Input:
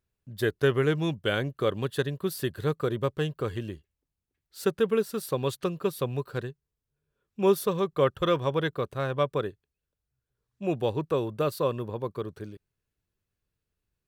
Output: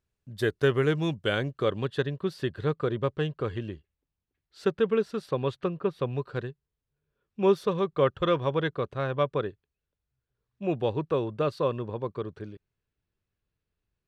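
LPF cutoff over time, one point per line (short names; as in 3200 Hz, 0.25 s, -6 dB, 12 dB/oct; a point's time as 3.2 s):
1.28 s 9000 Hz
2.04 s 4000 Hz
5.11 s 4000 Hz
5.89 s 2100 Hz
6.15 s 4200 Hz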